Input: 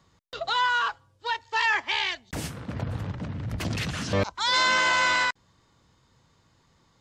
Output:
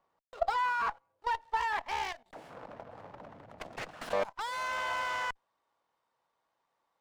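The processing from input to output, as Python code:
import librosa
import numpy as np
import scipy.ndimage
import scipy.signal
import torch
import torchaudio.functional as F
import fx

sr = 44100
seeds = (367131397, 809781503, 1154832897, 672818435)

y = fx.tilt_eq(x, sr, slope=fx.steps((0.0, 1.5), (4.0, 4.0)))
y = fx.level_steps(y, sr, step_db=15)
y = fx.bandpass_q(y, sr, hz=710.0, q=1.8)
y = fx.running_max(y, sr, window=5)
y = y * 10.0 ** (7.0 / 20.0)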